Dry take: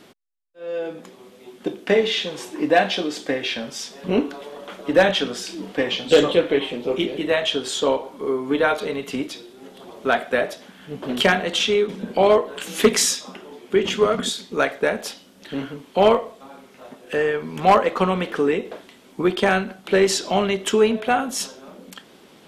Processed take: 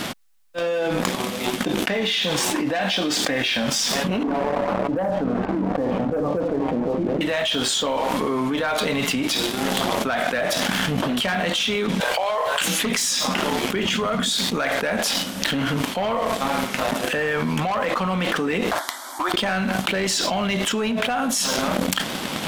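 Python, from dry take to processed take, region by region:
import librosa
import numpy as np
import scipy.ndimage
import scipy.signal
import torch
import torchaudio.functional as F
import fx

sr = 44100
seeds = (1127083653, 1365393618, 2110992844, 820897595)

y = fx.chain(x, sr, fx.lowpass(hz=1000.0, slope=24),
    fx.echo_single(ms=75, db=-13.0), at=(4.23, 7.21))
y = fx.chain(y, sr, fx.cheby2_highpass(hz=210.0, order=4, stop_db=50),
    fx.over_compress(threshold_db=-27.0, ratio=-1.0), at=(12.0, 12.61))
y = fx.chain(y, sr, fx.steep_highpass(hz=360.0, slope=36),
    fx.fixed_phaser(hz=1100.0, stages=4), at=(18.71, 19.34))
y = fx.peak_eq(y, sr, hz=400.0, db=-11.0, octaves=0.61)
y = fx.leveller(y, sr, passes=2)
y = fx.env_flatten(y, sr, amount_pct=100)
y = y * librosa.db_to_amplitude(-13.5)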